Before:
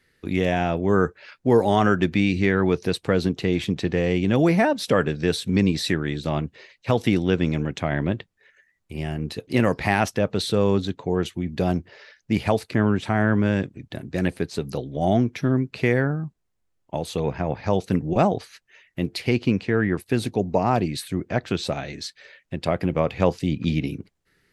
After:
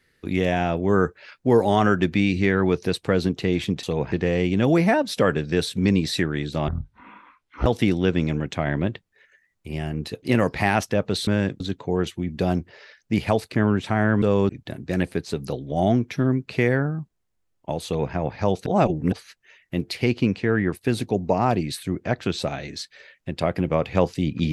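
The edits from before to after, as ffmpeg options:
-filter_complex "[0:a]asplit=11[a][b][c][d][e][f][g][h][i][j][k];[a]atrim=end=3.832[l];[b]atrim=start=17.098:end=17.392[m];[c]atrim=start=3.828:end=6.394[n];[d]atrim=start=6.39:end=6.91,asetpts=PTS-STARTPTS,asetrate=23373,aresample=44100[o];[e]atrim=start=6.906:end=10.522[p];[f]atrim=start=13.408:end=13.742[q];[g]atrim=start=10.788:end=13.412[r];[h]atrim=start=10.518:end=10.792[s];[i]atrim=start=13.738:end=17.912[t];[j]atrim=start=17.908:end=18.372,asetpts=PTS-STARTPTS,areverse[u];[k]atrim=start=18.368[v];[l][m]acrossfade=d=0.004:c1=hsin:c2=hsin[w];[w][n]acrossfade=d=0.004:c1=hsin:c2=hsin[x];[x][o]acrossfade=d=0.004:c1=hsin:c2=hsin[y];[y][p]acrossfade=d=0.004:c1=hsin:c2=hsin[z];[z][q]acrossfade=d=0.004:c1=hsin:c2=hsin[aa];[aa][r]acrossfade=d=0.004:c1=hsin:c2=hsin[ab];[ab][s]acrossfade=d=0.004:c1=hsin:c2=hsin[ac];[ac][t]acrossfade=d=0.004:c1=hsin:c2=hsin[ad];[ad][u]acrossfade=d=0.004:c1=hsin:c2=hsin[ae];[ae][v]acrossfade=d=0.004:c1=hsin:c2=hsin"

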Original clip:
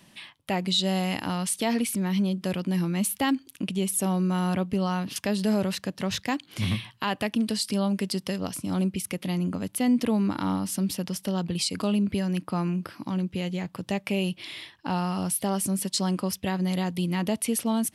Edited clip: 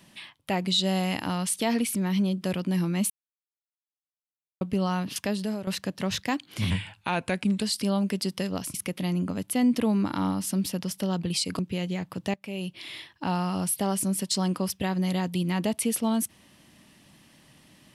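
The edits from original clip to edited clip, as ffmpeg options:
-filter_complex "[0:a]asplit=9[a][b][c][d][e][f][g][h][i];[a]atrim=end=3.1,asetpts=PTS-STARTPTS,afade=t=out:st=3.096:d=0.004:c=hsin[j];[b]atrim=start=3.1:end=4.61,asetpts=PTS-STARTPTS,volume=0[k];[c]atrim=start=4.61:end=5.67,asetpts=PTS-STARTPTS,afade=t=in:d=0.004:c=hsin,afade=t=out:st=0.59:d=0.47:silence=0.199526[l];[d]atrim=start=5.67:end=6.704,asetpts=PTS-STARTPTS,afade=t=in:d=0.004:c=hsin:silence=0.199526[m];[e]atrim=start=6.7:end=7.51,asetpts=PTS-STARTPTS,asetrate=38808,aresample=44100,atrim=end_sample=40592,asetpts=PTS-STARTPTS[n];[f]atrim=start=7.506:end=8.632[o];[g]atrim=start=8.988:end=11.842[p];[h]atrim=start=13.218:end=13.97,asetpts=PTS-STARTPTS,afade=t=out:st=0.748:d=0.004:c=hsin:silence=0.133352[q];[i]atrim=start=13.97,asetpts=PTS-STARTPTS,afade=t=in:d=0.63:silence=0.133352[r];[j][k][l][m]concat=n=4:v=0:a=1[s];[s][n]acrossfade=d=0.004:c1=hsin:c2=hsin[t];[t][o]acrossfade=d=0.004:c1=hsin:c2=hsin[u];[u][p]acrossfade=d=0.004:c1=hsin:c2=hsin[v];[q][r]concat=n=2:v=0:a=1[w];[v][w]acrossfade=d=0.004:c1=hsin:c2=hsin"

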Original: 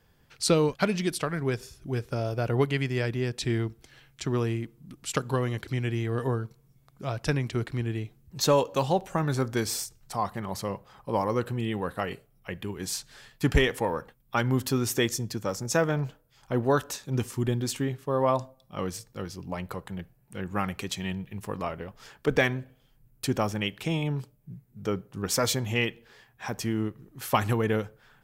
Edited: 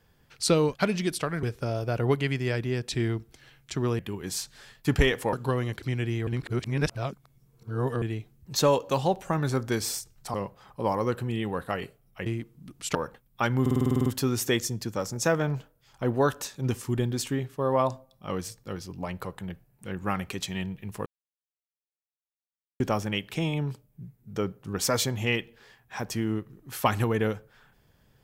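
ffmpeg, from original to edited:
-filter_complex "[0:a]asplit=20[a][b][c][d][e][f][g][h][i][j][k][l][m][n][o][p][q][r][s][t];[a]atrim=end=1.432[u];[b]atrim=start=1.928:end=4.492[v];[c]atrim=start=12.548:end=13.892[w];[d]atrim=start=5.178:end=6.122[x];[e]atrim=start=6.118:end=7.872,asetpts=PTS-STARTPTS,areverse[y];[f]atrim=start=7.868:end=10.192[z];[g]atrim=start=10.628:end=12.552[aa];[h]atrim=start=4.488:end=5.182[ab];[i]atrim=start=13.888:end=14.602[ac];[j]atrim=start=14.548:end=14.602[ad];[k]atrim=start=14.548:end=14.602[ae];[l]atrim=start=14.548:end=14.602[af];[m]atrim=start=14.548:end=14.602[ag];[n]atrim=start=14.548:end=14.602[ah];[o]atrim=start=14.548:end=14.602[ai];[p]atrim=start=14.548:end=14.602[aj];[q]atrim=start=14.548:end=14.602[ak];[r]atrim=start=14.548:end=21.55,asetpts=PTS-STARTPTS,afade=t=out:st=6.998:d=0.004:c=hsin[al];[s]atrim=start=21.55:end=23.29,asetpts=PTS-STARTPTS,volume=0[am];[t]atrim=start=23.29,asetpts=PTS-STARTPTS,afade=t=in:d=0.004:c=hsin[an];[u][v]acrossfade=d=0.004:c1=hsin:c2=hsin[ao];[ao][w]acrossfade=d=0.004:c1=hsin:c2=hsin[ap];[ap][x]acrossfade=d=0.004:c1=hsin:c2=hsin[aq];[aq][y]acrossfade=d=0.004:c1=hsin:c2=hsin[ar];[ar][z]acrossfade=d=0.004:c1=hsin:c2=hsin[as];[as][aa]acrossfade=d=0.004:c1=hsin:c2=hsin[at];[at][ab]acrossfade=d=0.004:c1=hsin:c2=hsin[au];[au][ac]acrossfade=d=0.004:c1=hsin:c2=hsin[av];[av][ad]acrossfade=d=0.004:c1=hsin:c2=hsin[aw];[aw][ae]acrossfade=d=0.004:c1=hsin:c2=hsin[ax];[ax][af]acrossfade=d=0.004:c1=hsin:c2=hsin[ay];[ay][ag]acrossfade=d=0.004:c1=hsin:c2=hsin[az];[az][ah]acrossfade=d=0.004:c1=hsin:c2=hsin[ba];[ba][ai]acrossfade=d=0.004:c1=hsin:c2=hsin[bb];[bb][aj]acrossfade=d=0.004:c1=hsin:c2=hsin[bc];[bc][ak]acrossfade=d=0.004:c1=hsin:c2=hsin[bd];[al][am][an]concat=n=3:v=0:a=1[be];[bd][be]acrossfade=d=0.004:c1=hsin:c2=hsin"

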